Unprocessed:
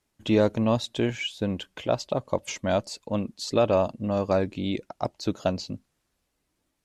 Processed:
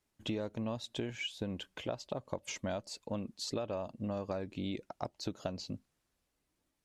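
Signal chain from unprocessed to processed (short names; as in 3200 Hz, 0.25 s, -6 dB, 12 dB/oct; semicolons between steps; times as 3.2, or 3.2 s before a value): compressor 10:1, threshold -28 dBFS, peak gain reduction 12.5 dB; gain -5.5 dB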